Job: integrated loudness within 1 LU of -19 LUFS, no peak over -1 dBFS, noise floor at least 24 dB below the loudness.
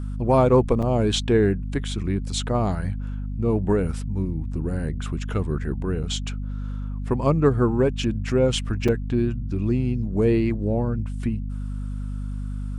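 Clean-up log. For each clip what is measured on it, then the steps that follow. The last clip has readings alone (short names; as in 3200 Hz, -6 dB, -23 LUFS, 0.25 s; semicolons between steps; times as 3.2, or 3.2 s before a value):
dropouts 3; longest dropout 5.4 ms; hum 50 Hz; harmonics up to 250 Hz; hum level -26 dBFS; loudness -24.0 LUFS; peak -5.5 dBFS; loudness target -19.0 LUFS
-> interpolate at 0.82/6.03/8.88, 5.4 ms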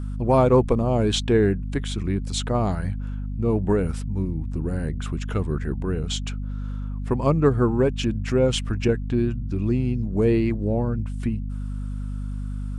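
dropouts 0; hum 50 Hz; harmonics up to 250 Hz; hum level -26 dBFS
-> notches 50/100/150/200/250 Hz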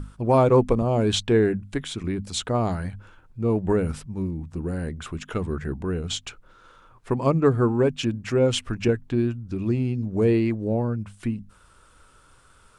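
hum none; loudness -24.5 LUFS; peak -7.0 dBFS; loudness target -19.0 LUFS
-> gain +5.5 dB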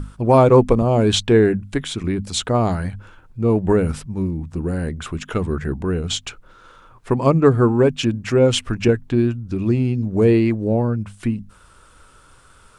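loudness -19.0 LUFS; peak -1.5 dBFS; noise floor -50 dBFS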